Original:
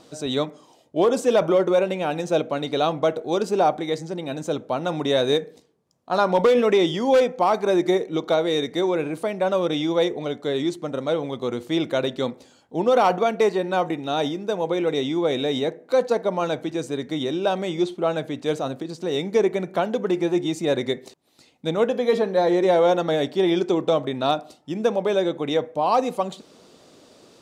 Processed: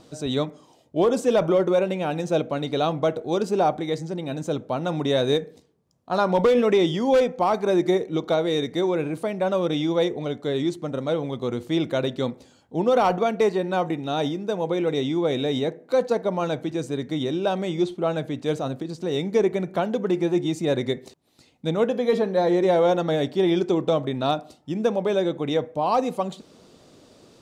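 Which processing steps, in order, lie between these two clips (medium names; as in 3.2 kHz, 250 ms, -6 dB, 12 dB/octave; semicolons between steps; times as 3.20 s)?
bass shelf 160 Hz +11 dB; trim -2.5 dB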